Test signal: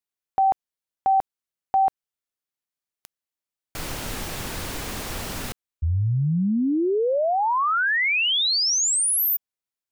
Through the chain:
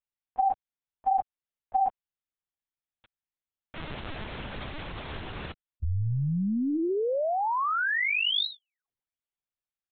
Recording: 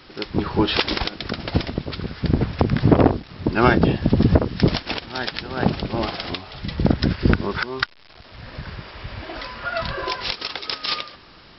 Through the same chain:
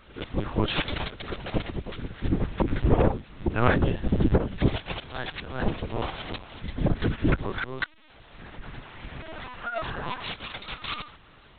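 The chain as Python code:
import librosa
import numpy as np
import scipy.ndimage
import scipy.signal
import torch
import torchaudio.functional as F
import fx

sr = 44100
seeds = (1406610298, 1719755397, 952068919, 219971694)

y = fx.lpc_vocoder(x, sr, seeds[0], excitation='pitch_kept', order=10)
y = y * librosa.db_to_amplitude(-5.5)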